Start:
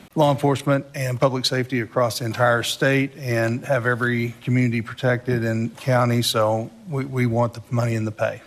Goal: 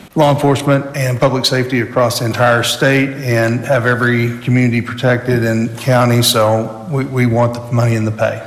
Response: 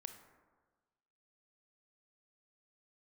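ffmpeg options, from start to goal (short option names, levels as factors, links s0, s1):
-filter_complex "[0:a]asplit=2[s0][s1];[1:a]atrim=start_sample=2205[s2];[s1][s2]afir=irnorm=-1:irlink=0,volume=1.88[s3];[s0][s3]amix=inputs=2:normalize=0,acontrast=40,asettb=1/sr,asplit=3[s4][s5][s6];[s4]atrim=end=5.214[s7];[s5]atrim=start=5.21:end=6.47,asetpts=PTS-STARTPTS,afade=t=in:d=0.004:c=qsin,afade=t=out:st=1.256:d=0.004:c=qsin,highshelf=f=5800:g=4.5[s8];[s6]atrim=start=6.466[s9];[s7][s8]acrossfade=d=0.004:c1=hsin:c2=qsin[s10];[s10][s9]acrossfade=d=0.004:c1=qsin:c2=hsin,volume=0.75"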